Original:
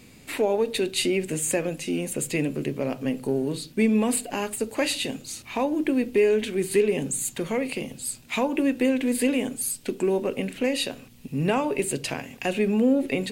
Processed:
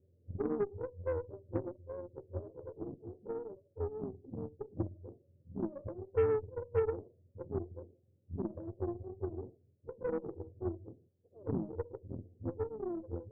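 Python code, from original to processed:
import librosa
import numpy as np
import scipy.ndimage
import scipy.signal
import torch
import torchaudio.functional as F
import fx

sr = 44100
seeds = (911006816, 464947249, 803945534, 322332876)

y = fx.octave_mirror(x, sr, pivot_hz=430.0)
y = scipy.signal.sosfilt(scipy.signal.cheby1(6, 1.0, 550.0, 'lowpass', fs=sr, output='sos'), y)
y = fx.cheby_harmonics(y, sr, harmonics=(3, 6, 7), levels_db=(-18, -27, -32), full_scale_db=-13.0)
y = y * 10.0 ** (-6.0 / 20.0)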